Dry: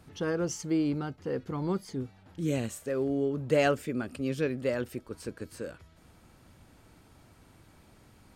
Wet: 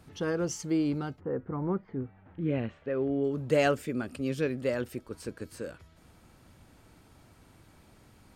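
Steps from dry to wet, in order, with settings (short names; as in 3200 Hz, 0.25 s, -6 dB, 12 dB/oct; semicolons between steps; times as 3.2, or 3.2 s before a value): 1.19–3.23 LPF 1500 Hz -> 3400 Hz 24 dB/oct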